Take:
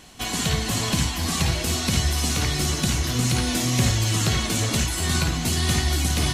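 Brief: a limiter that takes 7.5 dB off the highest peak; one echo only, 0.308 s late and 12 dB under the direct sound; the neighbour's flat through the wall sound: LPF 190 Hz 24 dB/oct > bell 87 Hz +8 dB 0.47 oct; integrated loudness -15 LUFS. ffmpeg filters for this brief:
-af "alimiter=limit=-14.5dB:level=0:latency=1,lowpass=f=190:w=0.5412,lowpass=f=190:w=1.3066,equalizer=f=87:t=o:w=0.47:g=8,aecho=1:1:308:0.251,volume=10dB"

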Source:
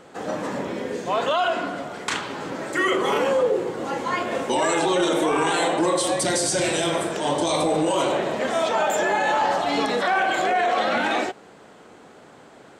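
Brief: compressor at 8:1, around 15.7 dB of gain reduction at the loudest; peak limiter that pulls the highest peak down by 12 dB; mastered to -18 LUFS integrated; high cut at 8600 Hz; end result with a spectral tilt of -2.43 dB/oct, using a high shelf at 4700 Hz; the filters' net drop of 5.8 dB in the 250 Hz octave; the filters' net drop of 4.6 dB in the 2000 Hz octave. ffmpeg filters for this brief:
-af "lowpass=8.6k,equalizer=f=250:t=o:g=-9,equalizer=f=2k:t=o:g=-7.5,highshelf=f=4.7k:g=9,acompressor=threshold=-36dB:ratio=8,volume=22.5dB,alimiter=limit=-9dB:level=0:latency=1"

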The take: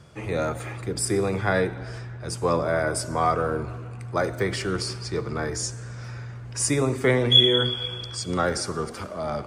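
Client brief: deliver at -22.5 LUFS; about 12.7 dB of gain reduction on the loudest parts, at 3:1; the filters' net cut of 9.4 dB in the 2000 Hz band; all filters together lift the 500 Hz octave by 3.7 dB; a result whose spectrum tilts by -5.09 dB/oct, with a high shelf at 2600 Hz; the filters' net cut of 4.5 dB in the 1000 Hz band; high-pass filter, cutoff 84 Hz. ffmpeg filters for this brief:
-af "highpass=84,equalizer=f=500:t=o:g=6.5,equalizer=f=1k:t=o:g=-6,equalizer=f=2k:t=o:g=-8.5,highshelf=f=2.6k:g=-5.5,acompressor=threshold=-33dB:ratio=3,volume=12.5dB"

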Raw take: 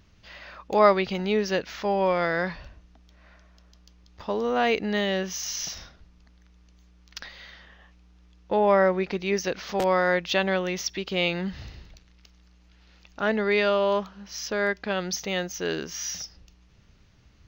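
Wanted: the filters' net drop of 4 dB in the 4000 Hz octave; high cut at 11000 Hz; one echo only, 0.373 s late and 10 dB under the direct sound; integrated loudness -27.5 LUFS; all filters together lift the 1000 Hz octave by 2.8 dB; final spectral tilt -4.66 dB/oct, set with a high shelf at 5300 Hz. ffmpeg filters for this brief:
-af "lowpass=11k,equalizer=f=1k:t=o:g=4,equalizer=f=4k:t=o:g=-3.5,highshelf=f=5.3k:g=-5.5,aecho=1:1:373:0.316,volume=-3dB"

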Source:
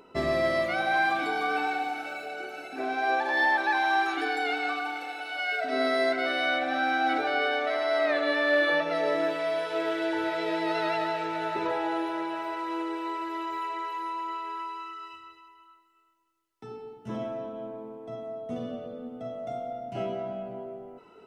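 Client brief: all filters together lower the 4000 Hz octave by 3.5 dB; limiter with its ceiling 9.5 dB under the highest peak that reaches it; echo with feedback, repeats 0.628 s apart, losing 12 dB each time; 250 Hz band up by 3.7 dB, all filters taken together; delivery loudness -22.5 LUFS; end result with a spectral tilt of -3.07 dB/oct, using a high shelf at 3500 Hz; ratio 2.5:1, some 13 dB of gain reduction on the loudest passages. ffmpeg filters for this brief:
-af "equalizer=f=250:t=o:g=5,highshelf=f=3.5k:g=4,equalizer=f=4k:t=o:g=-7,acompressor=threshold=-41dB:ratio=2.5,alimiter=level_in=11.5dB:limit=-24dB:level=0:latency=1,volume=-11.5dB,aecho=1:1:628|1256|1884:0.251|0.0628|0.0157,volume=20.5dB"

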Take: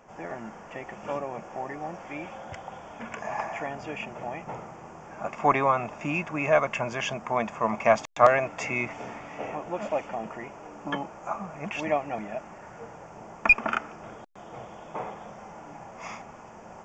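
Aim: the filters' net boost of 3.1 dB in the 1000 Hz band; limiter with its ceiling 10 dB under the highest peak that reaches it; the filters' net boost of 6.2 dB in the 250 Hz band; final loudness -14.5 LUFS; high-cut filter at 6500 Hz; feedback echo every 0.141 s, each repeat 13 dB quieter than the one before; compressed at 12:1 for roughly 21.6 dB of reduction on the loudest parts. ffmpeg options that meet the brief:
-af "lowpass=6.5k,equalizer=f=250:t=o:g=7.5,equalizer=f=1k:t=o:g=3.5,acompressor=threshold=-31dB:ratio=12,alimiter=level_in=2.5dB:limit=-24dB:level=0:latency=1,volume=-2.5dB,aecho=1:1:141|282|423:0.224|0.0493|0.0108,volume=24dB"

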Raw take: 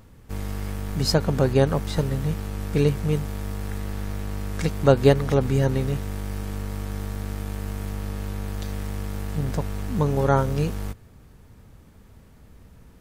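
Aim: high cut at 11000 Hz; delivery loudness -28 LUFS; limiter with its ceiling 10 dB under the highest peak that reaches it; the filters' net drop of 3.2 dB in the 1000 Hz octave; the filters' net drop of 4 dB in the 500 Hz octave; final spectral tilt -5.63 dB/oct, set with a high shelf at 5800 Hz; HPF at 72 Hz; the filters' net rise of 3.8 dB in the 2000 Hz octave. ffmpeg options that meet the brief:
-af "highpass=72,lowpass=11k,equalizer=f=500:t=o:g=-4,equalizer=f=1k:t=o:g=-5,equalizer=f=2k:t=o:g=6,highshelf=f=5.8k:g=7.5,volume=0.5dB,alimiter=limit=-13.5dB:level=0:latency=1"

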